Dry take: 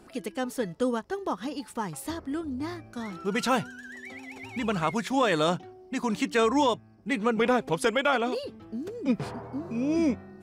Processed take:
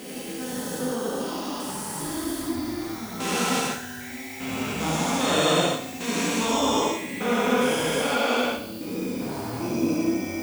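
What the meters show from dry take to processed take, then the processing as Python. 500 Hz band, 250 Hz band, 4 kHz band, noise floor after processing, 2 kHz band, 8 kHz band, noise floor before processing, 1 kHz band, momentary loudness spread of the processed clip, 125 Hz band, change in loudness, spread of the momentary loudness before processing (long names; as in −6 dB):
+1.5 dB, +2.0 dB, +7.5 dB, −37 dBFS, +3.0 dB, +12.0 dB, −52 dBFS, +2.0 dB, 10 LU, +4.0 dB, +2.5 dB, 13 LU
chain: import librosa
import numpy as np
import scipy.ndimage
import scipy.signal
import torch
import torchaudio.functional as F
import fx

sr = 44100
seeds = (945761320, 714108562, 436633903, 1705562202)

p1 = fx.spec_steps(x, sr, hold_ms=400)
p2 = fx.high_shelf(p1, sr, hz=3400.0, db=11.5)
p3 = fx.dmg_noise_colour(p2, sr, seeds[0], colour='violet', level_db=-53.0)
p4 = p3 + fx.echo_feedback(p3, sr, ms=69, feedback_pct=53, wet_db=-11.0, dry=0)
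y = fx.rev_gated(p4, sr, seeds[1], gate_ms=190, shape='flat', drr_db=-5.5)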